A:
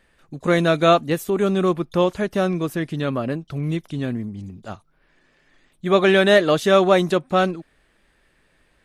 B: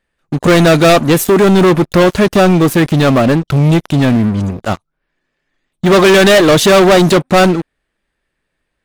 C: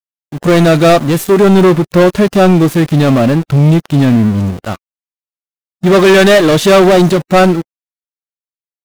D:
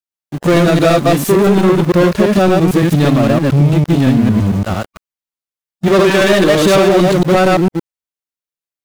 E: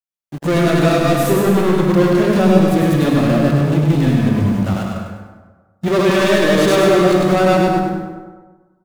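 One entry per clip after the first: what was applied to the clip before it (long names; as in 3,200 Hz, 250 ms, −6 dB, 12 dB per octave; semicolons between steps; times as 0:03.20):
leveller curve on the samples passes 5
automatic gain control gain up to 7 dB; centre clipping without the shift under −21.5 dBFS; harmonic and percussive parts rebalanced percussive −8 dB; level −1 dB
delay that plays each chunk backwards 113 ms, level 0 dB; downward compressor, threshold −6 dBFS, peak gain reduction 6.5 dB; level −1 dB
on a send: repeating echo 100 ms, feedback 39%, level −5 dB; on the sum: dense smooth reverb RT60 1.3 s, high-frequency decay 0.45×, pre-delay 105 ms, DRR 3 dB; level −6 dB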